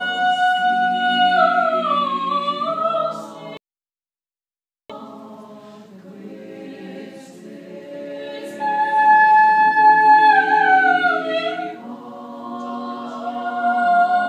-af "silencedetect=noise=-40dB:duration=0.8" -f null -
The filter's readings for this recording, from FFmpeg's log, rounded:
silence_start: 3.57
silence_end: 4.90 | silence_duration: 1.32